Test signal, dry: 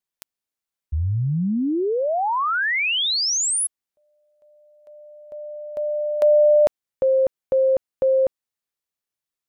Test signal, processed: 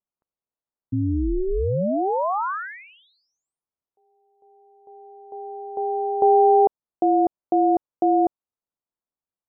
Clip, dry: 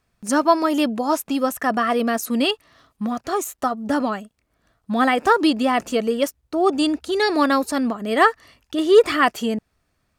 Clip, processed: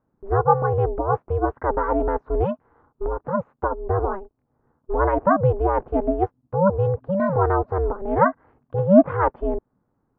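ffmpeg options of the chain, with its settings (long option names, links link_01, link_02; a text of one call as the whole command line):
ffmpeg -i in.wav -af "aeval=exprs='val(0)*sin(2*PI*190*n/s)':channel_layout=same,lowpass=frequency=1200:width=0.5412,lowpass=frequency=1200:width=1.3066,volume=2.5dB" out.wav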